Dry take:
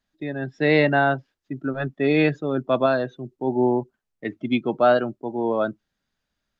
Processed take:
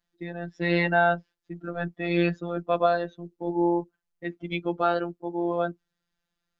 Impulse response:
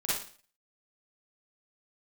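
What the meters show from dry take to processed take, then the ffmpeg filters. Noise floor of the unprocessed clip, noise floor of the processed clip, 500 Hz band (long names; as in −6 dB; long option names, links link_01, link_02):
−81 dBFS, −84 dBFS, −5.5 dB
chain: -af "afftfilt=real='hypot(re,im)*cos(PI*b)':imag='0':win_size=1024:overlap=0.75"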